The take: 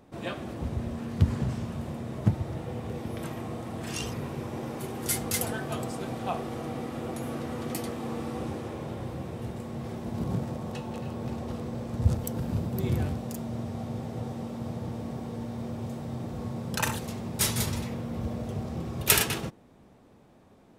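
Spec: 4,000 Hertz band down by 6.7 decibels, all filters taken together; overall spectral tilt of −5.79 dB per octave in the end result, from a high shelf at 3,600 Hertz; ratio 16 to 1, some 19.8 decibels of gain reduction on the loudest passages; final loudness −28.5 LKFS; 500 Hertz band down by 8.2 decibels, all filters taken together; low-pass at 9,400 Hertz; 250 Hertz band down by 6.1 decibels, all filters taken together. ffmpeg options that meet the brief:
ffmpeg -i in.wav -af "lowpass=9400,equalizer=frequency=250:width_type=o:gain=-6,equalizer=frequency=500:width_type=o:gain=-8.5,highshelf=frequency=3600:gain=-4,equalizer=frequency=4000:width_type=o:gain=-6,acompressor=threshold=-37dB:ratio=16,volume=14dB" out.wav

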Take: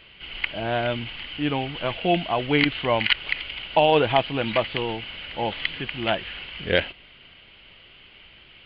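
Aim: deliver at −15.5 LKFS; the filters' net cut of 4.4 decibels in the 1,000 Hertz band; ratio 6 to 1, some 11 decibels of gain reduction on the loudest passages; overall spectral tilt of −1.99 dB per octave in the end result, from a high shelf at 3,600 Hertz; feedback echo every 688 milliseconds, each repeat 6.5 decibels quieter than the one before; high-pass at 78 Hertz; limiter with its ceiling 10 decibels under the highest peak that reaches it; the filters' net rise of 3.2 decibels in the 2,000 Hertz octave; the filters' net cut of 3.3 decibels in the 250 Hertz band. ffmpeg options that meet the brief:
ffmpeg -i in.wav -af "highpass=78,equalizer=frequency=250:width_type=o:gain=-4,equalizer=frequency=1000:width_type=o:gain=-7,equalizer=frequency=2000:width_type=o:gain=6.5,highshelf=frequency=3600:gain=-3.5,acompressor=threshold=-26dB:ratio=6,alimiter=limit=-20dB:level=0:latency=1,aecho=1:1:688|1376|2064|2752|3440|4128:0.473|0.222|0.105|0.0491|0.0231|0.0109,volume=16dB" out.wav

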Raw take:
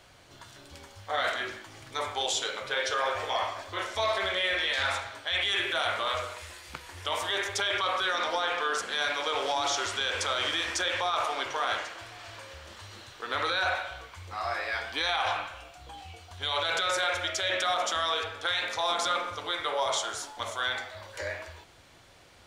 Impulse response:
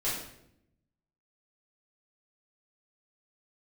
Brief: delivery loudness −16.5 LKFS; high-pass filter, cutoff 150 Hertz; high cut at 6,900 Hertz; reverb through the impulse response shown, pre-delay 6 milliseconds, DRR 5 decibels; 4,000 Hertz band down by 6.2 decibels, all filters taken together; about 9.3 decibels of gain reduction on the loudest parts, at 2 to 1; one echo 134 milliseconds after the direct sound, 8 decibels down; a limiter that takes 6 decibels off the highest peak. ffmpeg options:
-filter_complex "[0:a]highpass=150,lowpass=6900,equalizer=frequency=4000:width_type=o:gain=-7.5,acompressor=threshold=-43dB:ratio=2,alimiter=level_in=8dB:limit=-24dB:level=0:latency=1,volume=-8dB,aecho=1:1:134:0.398,asplit=2[link_01][link_02];[1:a]atrim=start_sample=2205,adelay=6[link_03];[link_02][link_03]afir=irnorm=-1:irlink=0,volume=-12dB[link_04];[link_01][link_04]amix=inputs=2:normalize=0,volume=23.5dB"

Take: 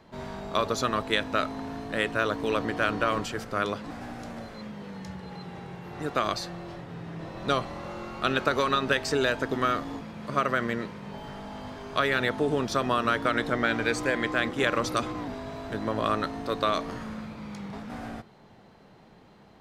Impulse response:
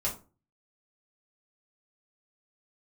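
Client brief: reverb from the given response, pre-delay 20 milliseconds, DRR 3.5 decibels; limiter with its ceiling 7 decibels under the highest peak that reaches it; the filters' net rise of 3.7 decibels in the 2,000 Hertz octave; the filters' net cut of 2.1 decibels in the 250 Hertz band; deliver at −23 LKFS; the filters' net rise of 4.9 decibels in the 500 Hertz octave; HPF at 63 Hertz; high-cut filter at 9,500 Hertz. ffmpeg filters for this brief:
-filter_complex "[0:a]highpass=63,lowpass=9500,equalizer=frequency=250:width_type=o:gain=-5,equalizer=frequency=500:width_type=o:gain=7,equalizer=frequency=2000:width_type=o:gain=4.5,alimiter=limit=-12.5dB:level=0:latency=1,asplit=2[link_01][link_02];[1:a]atrim=start_sample=2205,adelay=20[link_03];[link_02][link_03]afir=irnorm=-1:irlink=0,volume=-9dB[link_04];[link_01][link_04]amix=inputs=2:normalize=0,volume=2.5dB"

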